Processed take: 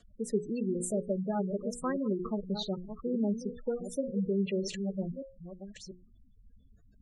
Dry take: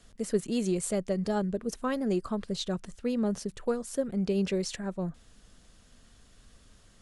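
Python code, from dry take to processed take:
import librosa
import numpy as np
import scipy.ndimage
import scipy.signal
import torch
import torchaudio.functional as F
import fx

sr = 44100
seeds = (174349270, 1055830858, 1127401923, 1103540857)

y = fx.reverse_delay(x, sr, ms=657, wet_db=-9.0)
y = fx.hum_notches(y, sr, base_hz=60, count=9)
y = fx.spec_gate(y, sr, threshold_db=-15, keep='strong')
y = y * librosa.db_to_amplitude(-1.5)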